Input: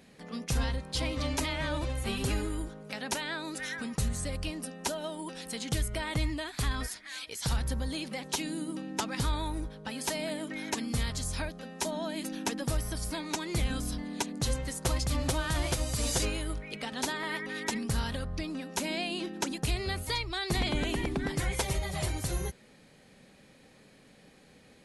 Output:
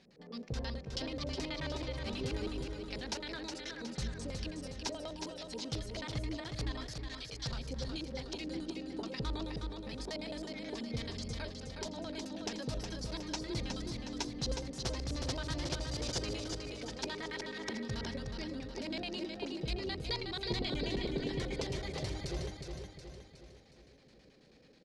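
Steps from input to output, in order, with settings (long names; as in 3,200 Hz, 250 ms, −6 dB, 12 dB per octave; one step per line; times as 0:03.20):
flanger 0.76 Hz, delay 5.1 ms, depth 4.9 ms, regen −53%
auto-filter low-pass square 9.3 Hz 460–5,100 Hz
on a send: repeating echo 365 ms, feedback 50%, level −5.5 dB
on the sum: level −4 dB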